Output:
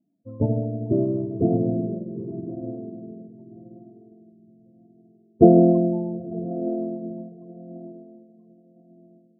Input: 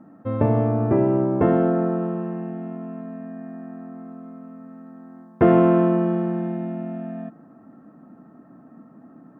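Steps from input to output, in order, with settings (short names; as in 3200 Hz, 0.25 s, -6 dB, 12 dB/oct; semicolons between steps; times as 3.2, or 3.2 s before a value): median filter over 41 samples; diffused feedback echo 0.968 s, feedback 51%, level -5 dB; loudest bins only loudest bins 16; upward expander 2.5:1, over -34 dBFS; gain +6 dB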